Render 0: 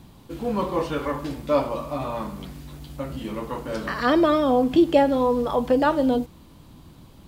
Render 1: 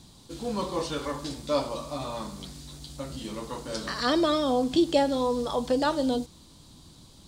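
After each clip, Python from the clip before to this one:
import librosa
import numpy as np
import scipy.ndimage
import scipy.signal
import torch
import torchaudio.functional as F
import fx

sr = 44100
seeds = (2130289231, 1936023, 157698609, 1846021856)

y = fx.band_shelf(x, sr, hz=5800.0, db=13.0, octaves=1.7)
y = y * 10.0 ** (-5.5 / 20.0)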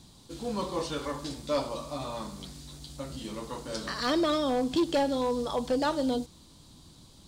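y = np.clip(x, -10.0 ** (-19.0 / 20.0), 10.0 ** (-19.0 / 20.0))
y = y * 10.0 ** (-2.0 / 20.0)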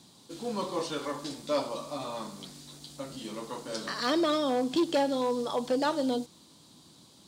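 y = scipy.signal.sosfilt(scipy.signal.butter(2, 180.0, 'highpass', fs=sr, output='sos'), x)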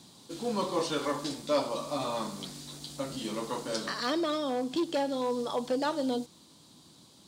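y = fx.rider(x, sr, range_db=4, speed_s=0.5)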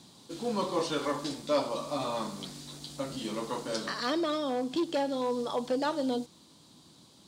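y = fx.high_shelf(x, sr, hz=8000.0, db=-4.0)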